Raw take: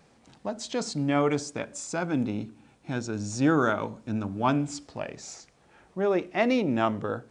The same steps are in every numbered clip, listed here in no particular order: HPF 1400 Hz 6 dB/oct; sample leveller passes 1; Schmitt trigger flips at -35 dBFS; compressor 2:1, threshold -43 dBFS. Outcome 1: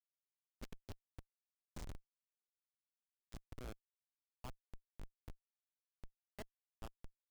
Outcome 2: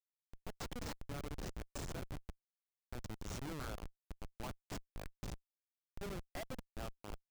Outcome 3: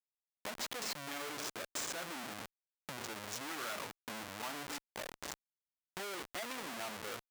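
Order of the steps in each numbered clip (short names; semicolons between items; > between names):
compressor > HPF > Schmitt trigger > sample leveller; sample leveller > HPF > compressor > Schmitt trigger; Schmitt trigger > HPF > sample leveller > compressor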